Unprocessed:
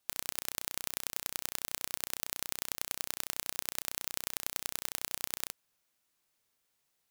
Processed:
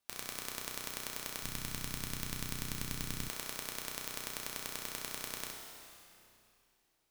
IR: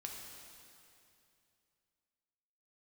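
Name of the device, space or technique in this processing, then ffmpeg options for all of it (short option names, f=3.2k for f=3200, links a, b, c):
swimming-pool hall: -filter_complex "[1:a]atrim=start_sample=2205[a];[0:a][a]afir=irnorm=-1:irlink=0,highshelf=f=4.8k:g=-5,asplit=3[b][c][d];[b]afade=t=out:st=1.42:d=0.02[e];[c]asubboost=boost=11.5:cutoff=190,afade=t=in:st=1.42:d=0.02,afade=t=out:st=3.28:d=0.02[f];[d]afade=t=in:st=3.28:d=0.02[g];[e][f][g]amix=inputs=3:normalize=0,volume=2.5dB"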